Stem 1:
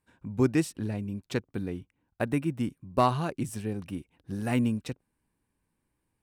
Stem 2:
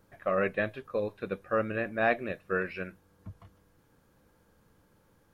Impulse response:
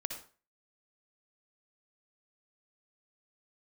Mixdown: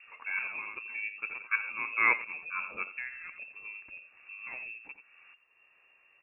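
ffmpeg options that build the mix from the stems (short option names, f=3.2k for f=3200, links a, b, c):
-filter_complex "[0:a]equalizer=f=200:w=1.9:g=-9.5,acompressor=threshold=-45dB:ratio=2,volume=-4dB,asplit=4[a][b][c][d];[b]volume=-15dB[e];[c]volume=-8.5dB[f];[1:a]volume=1.5dB,asplit=2[g][h];[h]volume=-17dB[i];[d]apad=whole_len=235367[j];[g][j]sidechaincompress=threshold=-54dB:ratio=10:attack=5.7:release=140[k];[2:a]atrim=start_sample=2205[l];[e][l]afir=irnorm=-1:irlink=0[m];[f][i]amix=inputs=2:normalize=0,aecho=0:1:86:1[n];[a][k][m][n]amix=inputs=4:normalize=0,adynamicequalizer=threshold=0.00631:dfrequency=2100:dqfactor=0.87:tfrequency=2100:tqfactor=0.87:attack=5:release=100:ratio=0.375:range=2:mode=cutabove:tftype=bell,acompressor=mode=upward:threshold=-47dB:ratio=2.5,lowpass=f=2.4k:t=q:w=0.5098,lowpass=f=2.4k:t=q:w=0.6013,lowpass=f=2.4k:t=q:w=0.9,lowpass=f=2.4k:t=q:w=2.563,afreqshift=-2800"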